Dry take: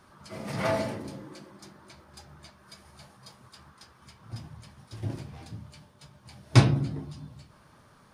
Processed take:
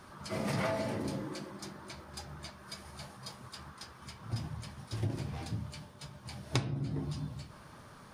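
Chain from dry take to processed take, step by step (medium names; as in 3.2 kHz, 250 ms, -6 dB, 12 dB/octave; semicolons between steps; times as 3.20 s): compression 12:1, threshold -34 dBFS, peak gain reduction 23 dB; trim +4.5 dB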